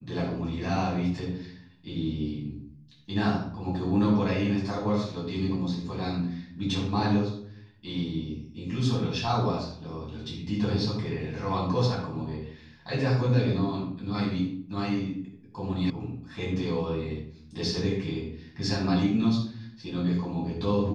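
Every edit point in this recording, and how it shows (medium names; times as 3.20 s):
15.90 s: sound stops dead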